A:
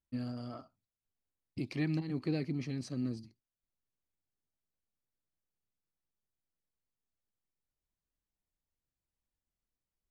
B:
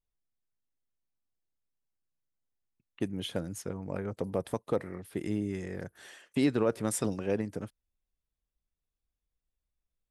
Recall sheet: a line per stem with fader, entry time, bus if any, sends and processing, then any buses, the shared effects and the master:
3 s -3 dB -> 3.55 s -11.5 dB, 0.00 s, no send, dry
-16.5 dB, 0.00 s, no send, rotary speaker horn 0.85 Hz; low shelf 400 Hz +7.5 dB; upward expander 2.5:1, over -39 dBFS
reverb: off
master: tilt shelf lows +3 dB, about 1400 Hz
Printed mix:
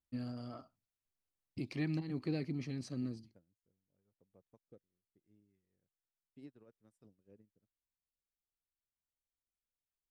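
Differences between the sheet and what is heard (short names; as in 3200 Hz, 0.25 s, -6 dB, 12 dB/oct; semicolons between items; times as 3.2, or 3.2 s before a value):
stem B -16.5 dB -> -28.0 dB; master: missing tilt shelf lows +3 dB, about 1400 Hz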